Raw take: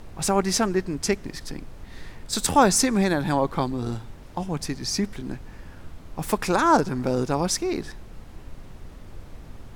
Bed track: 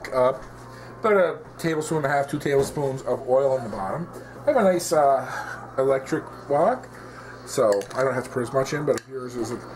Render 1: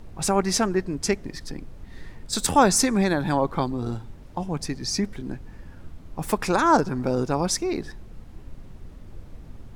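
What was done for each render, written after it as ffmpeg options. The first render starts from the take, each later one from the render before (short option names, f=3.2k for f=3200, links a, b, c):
-af "afftdn=nr=6:nf=-44"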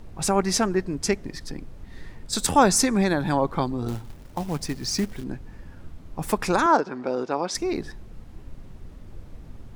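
-filter_complex "[0:a]asettb=1/sr,asplit=3[a][b][c];[a]atrim=end=3.884[d];[b]atrim=start=3.88:end=5.24,asetpts=PTS-STARTPTS,afade=t=in:d=0.004:c=qsin,afade=t=out:st=1.356:d=0.004:c=qsin,acrusher=bits=4:mode=log:mix=0:aa=0.000001[e];[c]atrim=start=5.236[f];[d][e]acrossfade=d=0.004:c1=hsin:c2=qsin[g];[g][f]acrossfade=d=0.004:c1=qsin:c2=hsin,asettb=1/sr,asplit=3[h][i][j];[h]atrim=end=6.664[k];[i]atrim=start=6.66:end=7.55,asetpts=PTS-STARTPTS,afade=t=in:d=0.004:c=qsin,afade=t=out:st=0.886:d=0.004:c=qsin,highpass=330,lowpass=4.4k[l];[j]atrim=start=7.546[m];[k][l]acrossfade=d=0.004:c1=hsin:c2=qsin[n];[n][m]acrossfade=d=0.004:c1=qsin:c2=hsin"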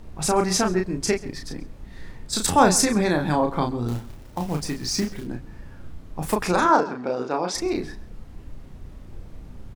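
-filter_complex "[0:a]asplit=2[a][b];[b]adelay=33,volume=-4.5dB[c];[a][c]amix=inputs=2:normalize=0,asplit=2[d][e];[e]adelay=134.1,volume=-19dB,highshelf=f=4k:g=-3.02[f];[d][f]amix=inputs=2:normalize=0"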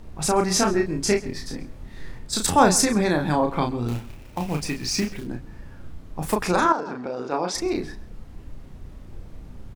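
-filter_complex "[0:a]asettb=1/sr,asplit=3[a][b][c];[a]atrim=end=0.544[d];[b]atrim=start=0.54:end=2.19,asetpts=PTS-STARTPTS,afade=t=in:d=0.004:c=qsin,afade=t=out:st=1.646:d=0.004:c=qsin,asplit=2[e][f];[f]adelay=25,volume=-3.5dB[g];[e][g]amix=inputs=2:normalize=0,atrim=end_sample=72765[h];[c]atrim=start=2.186[i];[d][h]acrossfade=d=0.004:c1=hsin:c2=qsin[j];[j][i]acrossfade=d=0.004:c1=qsin:c2=hsin,asettb=1/sr,asplit=3[k][l][m];[k]atrim=end=3.494[n];[l]atrim=start=3.49:end=5.18,asetpts=PTS-STARTPTS,afade=t=in:d=0.004:c=qsin,afade=t=out:st=1.686:d=0.004:c=qsin,equalizer=f=2.5k:t=o:w=0.42:g=9.5[o];[m]atrim=start=5.176[p];[n][o]acrossfade=d=0.004:c1=hsin:c2=qsin[q];[q][p]acrossfade=d=0.004:c1=qsin:c2=hsin,asettb=1/sr,asplit=3[r][s][t];[r]atrim=end=6.724[u];[s]atrim=start=6.72:end=7.32,asetpts=PTS-STARTPTS,afade=t=in:d=0.004:c=qsin,afade=t=out:st=0.596:d=0.004:c=qsin,acompressor=threshold=-26dB:ratio=3:attack=3.2:release=140:knee=1:detection=peak[v];[t]atrim=start=7.316[w];[u][v]acrossfade=d=0.004:c1=hsin:c2=qsin[x];[x][w]acrossfade=d=0.004:c1=qsin:c2=hsin"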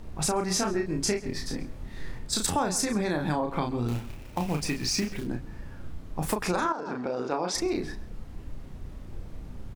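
-af "acompressor=threshold=-24dB:ratio=6"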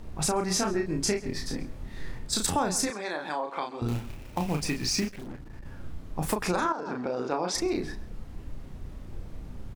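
-filter_complex "[0:a]asettb=1/sr,asplit=3[a][b][c];[a]atrim=end=2.904[d];[b]atrim=start=2.9:end=3.82,asetpts=PTS-STARTPTS,afade=t=in:d=0.004:c=qsin,afade=t=out:st=0.916:d=0.004:c=qsin,highpass=540,lowpass=8k[e];[c]atrim=start=3.816[f];[d][e]acrossfade=d=0.004:c1=hsin:c2=qsin[g];[g][f]acrossfade=d=0.004:c1=qsin:c2=hsin,asplit=3[h][i][j];[h]afade=t=out:st=5.08:d=0.02[k];[i]aeval=exprs='(tanh(70.8*val(0)+0.45)-tanh(0.45))/70.8':c=same,afade=t=in:st=5.08:d=0.02,afade=t=out:st=5.64:d=0.02[l];[j]afade=t=in:st=5.64:d=0.02[m];[k][l][m]amix=inputs=3:normalize=0"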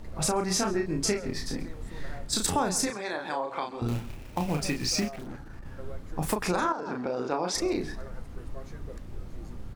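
-filter_complex "[1:a]volume=-24dB[a];[0:a][a]amix=inputs=2:normalize=0"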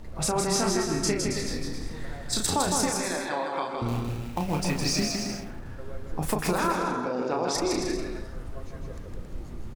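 -af "aecho=1:1:160|272|350.4|405.3|443.7:0.631|0.398|0.251|0.158|0.1"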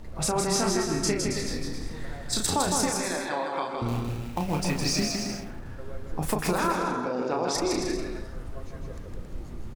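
-af anull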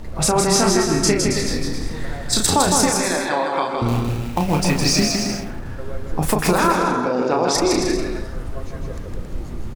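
-af "volume=9dB,alimiter=limit=-3dB:level=0:latency=1"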